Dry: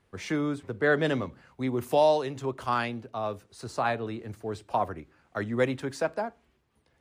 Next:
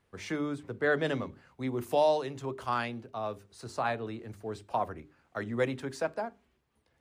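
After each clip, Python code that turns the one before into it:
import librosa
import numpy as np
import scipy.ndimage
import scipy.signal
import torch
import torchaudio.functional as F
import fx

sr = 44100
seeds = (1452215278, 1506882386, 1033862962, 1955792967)

y = fx.hum_notches(x, sr, base_hz=50, count=8)
y = y * librosa.db_to_amplitude(-3.5)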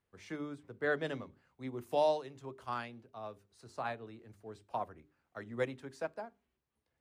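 y = fx.upward_expand(x, sr, threshold_db=-38.0, expansion=1.5)
y = y * librosa.db_to_amplitude(-4.0)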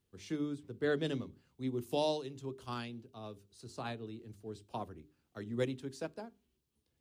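y = fx.band_shelf(x, sr, hz=1100.0, db=-10.5, octaves=2.4)
y = y * librosa.db_to_amplitude(5.5)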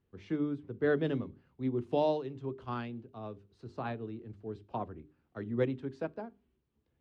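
y = scipy.signal.sosfilt(scipy.signal.butter(2, 2000.0, 'lowpass', fs=sr, output='sos'), x)
y = y * librosa.db_to_amplitude(4.0)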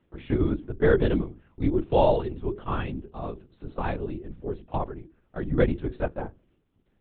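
y = fx.lpc_vocoder(x, sr, seeds[0], excitation='whisper', order=10)
y = y * librosa.db_to_amplitude(9.0)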